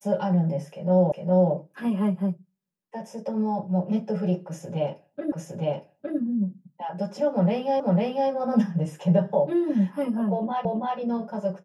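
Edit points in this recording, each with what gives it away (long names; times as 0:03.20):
0:01.12: the same again, the last 0.41 s
0:05.32: the same again, the last 0.86 s
0:07.80: the same again, the last 0.5 s
0:10.65: the same again, the last 0.33 s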